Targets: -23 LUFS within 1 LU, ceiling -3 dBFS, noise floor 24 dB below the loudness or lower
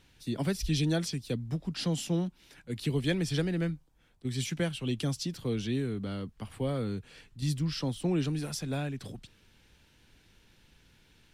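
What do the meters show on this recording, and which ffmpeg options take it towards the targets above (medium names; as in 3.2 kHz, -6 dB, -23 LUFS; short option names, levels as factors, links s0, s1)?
loudness -33.0 LUFS; peak level -17.5 dBFS; loudness target -23.0 LUFS
-> -af "volume=3.16"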